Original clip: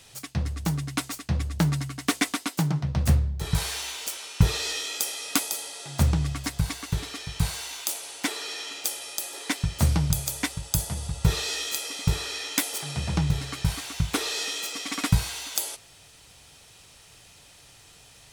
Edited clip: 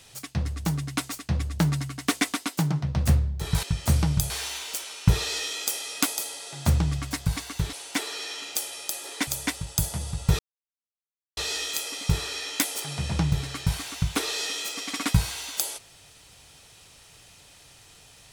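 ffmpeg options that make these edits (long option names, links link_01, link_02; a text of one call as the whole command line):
ffmpeg -i in.wav -filter_complex "[0:a]asplit=6[link_01][link_02][link_03][link_04][link_05][link_06];[link_01]atrim=end=3.632[link_07];[link_02]atrim=start=9.558:end=10.232[link_08];[link_03]atrim=start=3.628:end=7.062[link_09];[link_04]atrim=start=8.018:end=9.562[link_10];[link_05]atrim=start=10.228:end=11.35,asetpts=PTS-STARTPTS,afade=type=out:start_time=1.118:duration=0.004:curve=hsin,apad=pad_dur=0.98[link_11];[link_06]atrim=start=11.35,asetpts=PTS-STARTPTS,afade=type=in:duration=0.004:curve=hsin[link_12];[link_07][link_08]acrossfade=duration=0.004:curve1=hsin:curve2=hsin[link_13];[link_13][link_09]acrossfade=duration=0.004:curve1=hsin:curve2=hsin[link_14];[link_14][link_10]acrossfade=duration=0.004:curve1=hsin:curve2=hsin[link_15];[link_11][link_12]concat=n=2:v=0:a=1[link_16];[link_15][link_16]acrossfade=duration=0.004:curve1=hsin:curve2=hsin" out.wav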